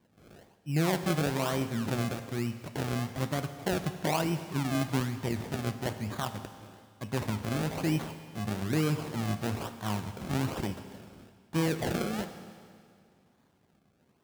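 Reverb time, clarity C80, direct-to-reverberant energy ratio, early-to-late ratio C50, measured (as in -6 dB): 2.1 s, 11.0 dB, 8.5 dB, 10.0 dB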